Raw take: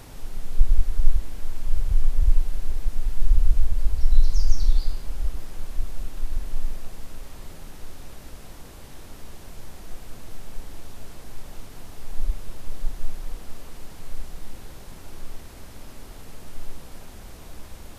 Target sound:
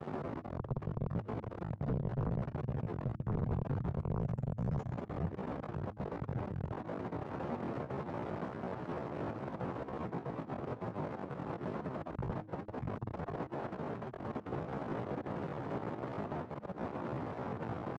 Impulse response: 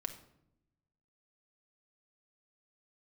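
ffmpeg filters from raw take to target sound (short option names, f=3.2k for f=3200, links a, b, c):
-af "aecho=1:1:270:0.0944,aeval=exprs='val(0)*gte(abs(val(0)),0.00944)':c=same,lowshelf=f=130:g=-3.5,aeval=exprs='(tanh(28.2*val(0)+0.55)-tanh(0.55))/28.2':c=same,highpass=f=79:w=0.5412,highpass=f=79:w=1.3066,aeval=exprs='0.0106*(abs(mod(val(0)/0.0106+3,4)-2)-1)':c=same,agate=range=-33dB:threshold=-52dB:ratio=3:detection=peak,asetrate=64194,aresample=44100,atempo=0.686977,lowpass=1k,bandreject=f=105.2:t=h:w=4,bandreject=f=210.4:t=h:w=4,bandreject=f=315.6:t=h:w=4,volume=13dB"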